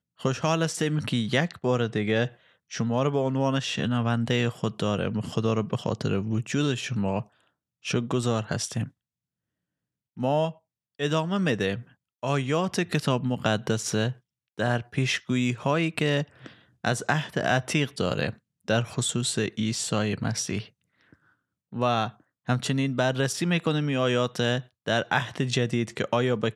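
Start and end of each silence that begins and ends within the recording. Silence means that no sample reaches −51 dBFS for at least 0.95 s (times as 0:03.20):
0:08.91–0:10.17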